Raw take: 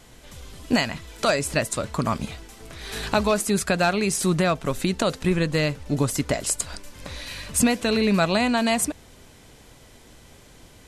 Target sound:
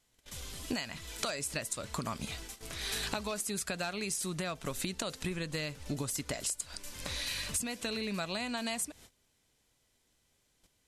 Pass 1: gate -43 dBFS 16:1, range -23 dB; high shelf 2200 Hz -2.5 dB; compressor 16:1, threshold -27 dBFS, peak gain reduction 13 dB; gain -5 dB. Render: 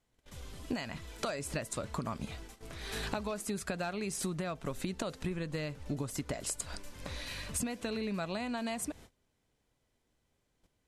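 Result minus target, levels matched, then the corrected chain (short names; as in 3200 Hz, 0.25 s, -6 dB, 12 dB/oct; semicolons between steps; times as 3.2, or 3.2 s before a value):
4000 Hz band -4.5 dB
gate -43 dBFS 16:1, range -23 dB; high shelf 2200 Hz +9.5 dB; compressor 16:1, threshold -27 dBFS, peak gain reduction 18 dB; gain -5 dB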